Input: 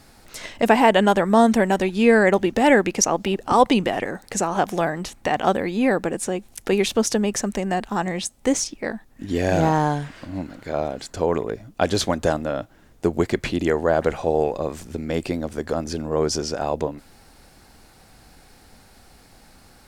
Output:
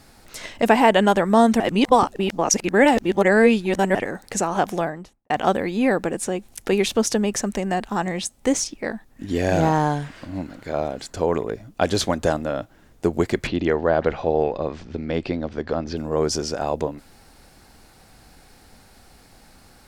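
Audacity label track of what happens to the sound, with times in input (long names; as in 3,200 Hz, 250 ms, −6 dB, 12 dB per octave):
1.600000	3.950000	reverse
4.650000	5.300000	fade out and dull
13.470000	15.970000	low-pass filter 4,800 Hz 24 dB per octave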